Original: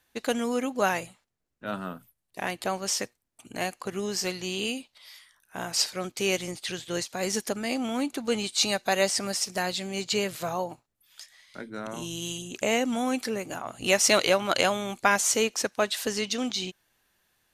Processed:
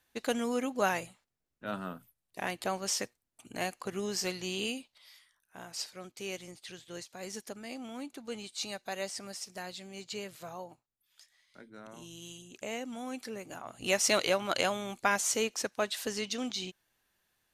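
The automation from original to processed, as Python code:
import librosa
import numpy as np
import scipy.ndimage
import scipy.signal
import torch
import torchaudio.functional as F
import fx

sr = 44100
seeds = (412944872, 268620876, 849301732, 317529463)

y = fx.gain(x, sr, db=fx.line((4.62, -4.0), (5.67, -13.0), (12.96, -13.0), (13.94, -6.0)))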